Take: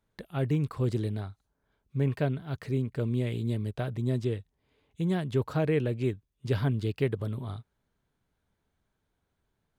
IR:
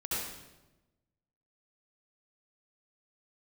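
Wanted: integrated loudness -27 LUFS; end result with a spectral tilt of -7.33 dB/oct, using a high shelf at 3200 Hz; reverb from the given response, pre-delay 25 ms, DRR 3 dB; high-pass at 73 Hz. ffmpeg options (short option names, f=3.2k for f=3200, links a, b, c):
-filter_complex "[0:a]highpass=73,highshelf=f=3.2k:g=7.5,asplit=2[a][b];[1:a]atrim=start_sample=2205,adelay=25[c];[b][c]afir=irnorm=-1:irlink=0,volume=-8dB[d];[a][d]amix=inputs=2:normalize=0,volume=1.5dB"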